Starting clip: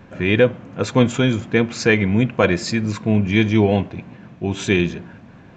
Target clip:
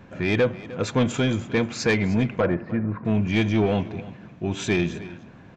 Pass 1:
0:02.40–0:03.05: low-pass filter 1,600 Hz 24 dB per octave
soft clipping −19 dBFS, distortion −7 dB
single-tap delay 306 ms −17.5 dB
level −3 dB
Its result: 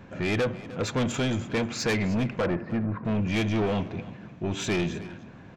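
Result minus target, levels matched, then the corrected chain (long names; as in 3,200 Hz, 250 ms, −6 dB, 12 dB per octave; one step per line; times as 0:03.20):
soft clipping: distortion +7 dB
0:02.40–0:03.05: low-pass filter 1,600 Hz 24 dB per octave
soft clipping −10.5 dBFS, distortion −14 dB
single-tap delay 306 ms −17.5 dB
level −3 dB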